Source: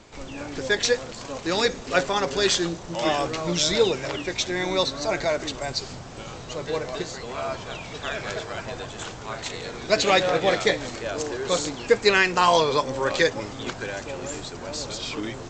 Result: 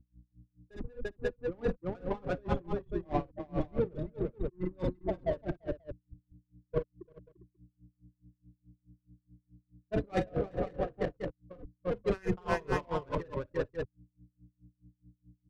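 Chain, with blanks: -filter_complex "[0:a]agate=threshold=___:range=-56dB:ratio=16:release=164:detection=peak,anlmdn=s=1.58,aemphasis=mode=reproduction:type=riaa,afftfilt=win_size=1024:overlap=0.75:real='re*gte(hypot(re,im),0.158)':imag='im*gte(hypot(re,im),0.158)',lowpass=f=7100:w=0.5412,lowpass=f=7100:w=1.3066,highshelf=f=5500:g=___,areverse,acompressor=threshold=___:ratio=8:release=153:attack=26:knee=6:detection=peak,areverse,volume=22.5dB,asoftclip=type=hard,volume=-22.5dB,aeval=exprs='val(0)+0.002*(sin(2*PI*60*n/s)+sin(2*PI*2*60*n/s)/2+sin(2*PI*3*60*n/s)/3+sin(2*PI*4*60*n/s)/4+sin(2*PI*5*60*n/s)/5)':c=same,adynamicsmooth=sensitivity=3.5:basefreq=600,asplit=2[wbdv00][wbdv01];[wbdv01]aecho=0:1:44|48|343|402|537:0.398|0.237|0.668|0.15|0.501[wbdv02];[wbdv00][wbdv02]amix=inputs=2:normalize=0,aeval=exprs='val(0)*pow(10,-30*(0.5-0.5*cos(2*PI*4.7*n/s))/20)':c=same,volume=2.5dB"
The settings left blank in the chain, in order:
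-25dB, 5, -29dB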